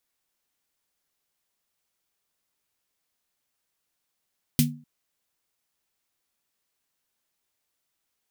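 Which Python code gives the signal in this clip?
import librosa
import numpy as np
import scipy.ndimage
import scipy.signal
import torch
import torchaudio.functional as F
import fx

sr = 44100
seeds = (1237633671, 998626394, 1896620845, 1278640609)

y = fx.drum_snare(sr, seeds[0], length_s=0.25, hz=150.0, second_hz=240.0, noise_db=-3.0, noise_from_hz=2200.0, decay_s=0.39, noise_decay_s=0.15)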